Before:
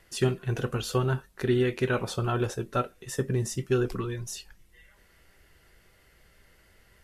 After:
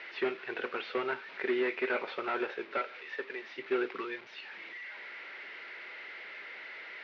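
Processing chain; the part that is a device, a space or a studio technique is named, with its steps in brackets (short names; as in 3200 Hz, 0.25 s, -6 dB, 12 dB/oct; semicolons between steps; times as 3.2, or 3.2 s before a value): 2.77–3.57 HPF 350 Hz -> 1100 Hz 6 dB/oct; digital answering machine (BPF 320–3200 Hz; delta modulation 32 kbps, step -43.5 dBFS; speaker cabinet 480–3500 Hz, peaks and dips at 510 Hz -4 dB, 720 Hz -6 dB, 1100 Hz -5 dB, 2200 Hz +7 dB, 3200 Hz -3 dB); gain +3.5 dB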